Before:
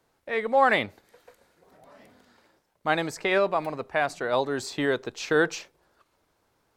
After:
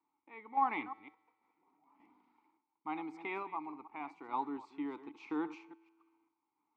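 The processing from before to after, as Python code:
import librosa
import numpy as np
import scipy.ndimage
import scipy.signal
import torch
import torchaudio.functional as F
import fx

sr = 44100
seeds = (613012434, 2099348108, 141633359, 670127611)

y = fx.reverse_delay(x, sr, ms=155, wet_db=-13.0)
y = fx.vowel_filter(y, sr, vowel='u')
y = fx.peak_eq(y, sr, hz=1200.0, db=13.5, octaves=0.97)
y = fx.comb_fb(y, sr, f0_hz=110.0, decay_s=1.6, harmonics='all', damping=0.0, mix_pct=40)
y = fx.tremolo_random(y, sr, seeds[0], hz=3.5, depth_pct=55)
y = F.gain(torch.from_numpy(y), 1.0).numpy()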